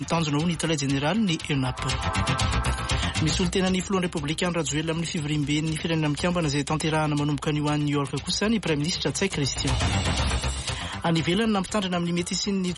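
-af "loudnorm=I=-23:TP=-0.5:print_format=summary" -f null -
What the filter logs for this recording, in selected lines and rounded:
Input Integrated:    -25.3 LUFS
Input True Peak:     -12.5 dBTP
Input LRA:             0.6 LU
Input Threshold:     -35.3 LUFS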